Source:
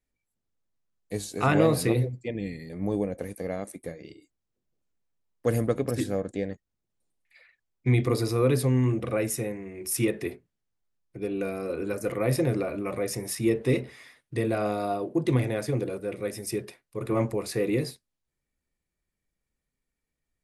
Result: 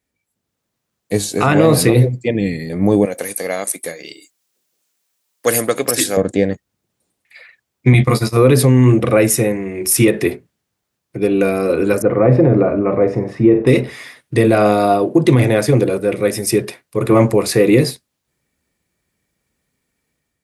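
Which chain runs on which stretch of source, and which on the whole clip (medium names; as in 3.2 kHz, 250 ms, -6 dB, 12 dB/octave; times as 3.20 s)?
3.05–6.17 s: high-pass 810 Hz 6 dB/octave + treble shelf 3.3 kHz +10.5 dB
7.93–8.37 s: gate -28 dBFS, range -20 dB + peaking EQ 390 Hz -12 dB 0.81 oct + doubling 14 ms -6 dB
12.02–13.67 s: low-pass 1.2 kHz + flutter echo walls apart 8.1 m, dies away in 0.27 s
whole clip: high-pass 84 Hz; level rider gain up to 5.5 dB; loudness maximiser +11 dB; trim -1 dB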